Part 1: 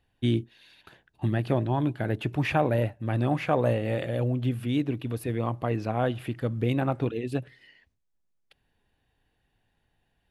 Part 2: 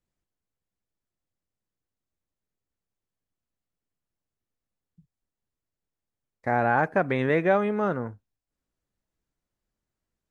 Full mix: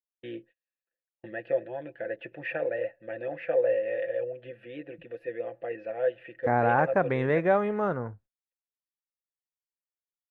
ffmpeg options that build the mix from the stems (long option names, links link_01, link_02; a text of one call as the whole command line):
ffmpeg -i stem1.wav -i stem2.wav -filter_complex "[0:a]asplit=3[link_01][link_02][link_03];[link_01]bandpass=frequency=530:width_type=q:width=8,volume=0dB[link_04];[link_02]bandpass=frequency=1840:width_type=q:width=8,volume=-6dB[link_05];[link_03]bandpass=frequency=2480:width_type=q:width=8,volume=-9dB[link_06];[link_04][link_05][link_06]amix=inputs=3:normalize=0,equalizer=frequency=1500:width=0.6:gain=10.5,aecho=1:1:5.9:0.65,volume=1.5dB[link_07];[1:a]volume=1dB[link_08];[link_07][link_08]amix=inputs=2:normalize=0,highshelf=frequency=2200:gain=-11,agate=range=-37dB:threshold=-52dB:ratio=16:detection=peak,adynamicequalizer=threshold=0.00631:dfrequency=250:dqfactor=1.1:tfrequency=250:tqfactor=1.1:attack=5:release=100:ratio=0.375:range=3:mode=cutabove:tftype=bell" out.wav